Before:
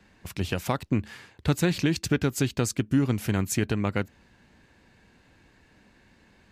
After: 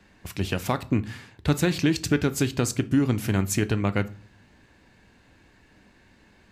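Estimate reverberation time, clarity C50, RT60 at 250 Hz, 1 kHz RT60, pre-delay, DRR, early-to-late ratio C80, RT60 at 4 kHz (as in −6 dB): 0.45 s, 19.5 dB, 0.65 s, 0.40 s, 3 ms, 12.0 dB, 24.5 dB, 0.35 s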